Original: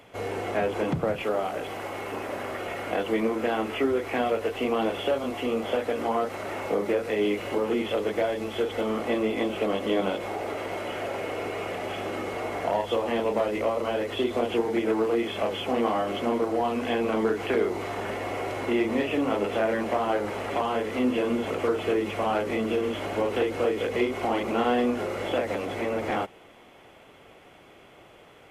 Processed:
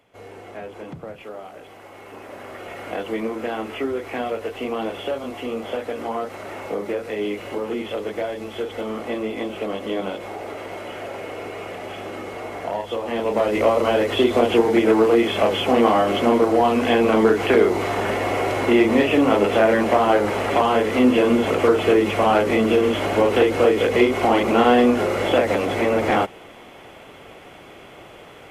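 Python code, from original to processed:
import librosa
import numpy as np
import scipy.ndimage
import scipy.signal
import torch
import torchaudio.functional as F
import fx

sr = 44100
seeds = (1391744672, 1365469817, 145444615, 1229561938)

y = fx.gain(x, sr, db=fx.line((1.81, -9.0), (2.9, -0.5), (12.99, -0.5), (13.65, 9.0)))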